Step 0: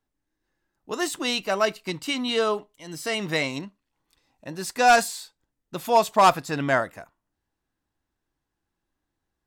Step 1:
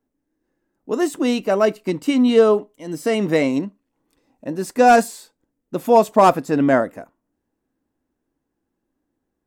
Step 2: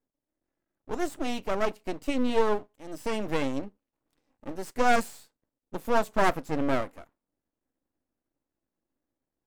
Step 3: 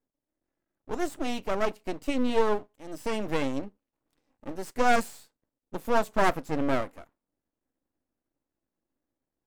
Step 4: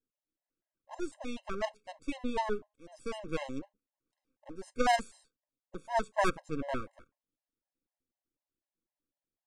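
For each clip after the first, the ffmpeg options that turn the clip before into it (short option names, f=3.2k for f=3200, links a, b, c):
-af "equalizer=f=250:t=o:w=1:g=12,equalizer=f=500:t=o:w=1:g=8,equalizer=f=4k:t=o:w=1:g=-6,dynaudnorm=f=580:g=7:m=11.5dB,volume=-1dB"
-af "aeval=exprs='max(val(0),0)':c=same,volume=-6.5dB"
-af anull
-af "aresample=22050,aresample=44100,aeval=exprs='0.398*(cos(1*acos(clip(val(0)/0.398,-1,1)))-cos(1*PI/2))+0.0794*(cos(3*acos(clip(val(0)/0.398,-1,1)))-cos(3*PI/2))':c=same,afftfilt=real='re*gt(sin(2*PI*4*pts/sr)*(1-2*mod(floor(b*sr/1024/540),2)),0)':imag='im*gt(sin(2*PI*4*pts/sr)*(1-2*mod(floor(b*sr/1024/540),2)),0)':win_size=1024:overlap=0.75,volume=1dB"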